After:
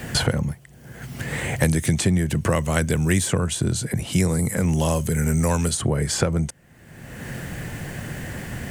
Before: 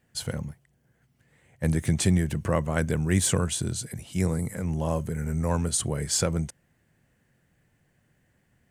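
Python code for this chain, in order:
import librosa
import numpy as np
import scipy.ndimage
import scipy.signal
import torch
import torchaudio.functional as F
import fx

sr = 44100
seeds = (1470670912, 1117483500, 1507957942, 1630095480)

y = fx.band_squash(x, sr, depth_pct=100)
y = y * 10.0 ** (5.0 / 20.0)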